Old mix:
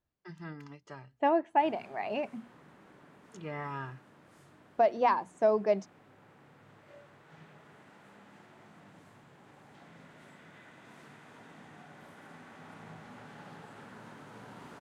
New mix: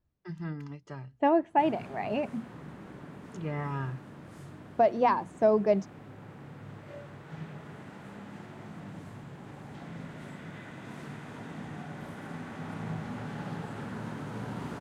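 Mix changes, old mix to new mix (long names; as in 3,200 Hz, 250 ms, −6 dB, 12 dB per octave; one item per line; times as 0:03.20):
background +6.5 dB
master: add low-shelf EQ 270 Hz +12 dB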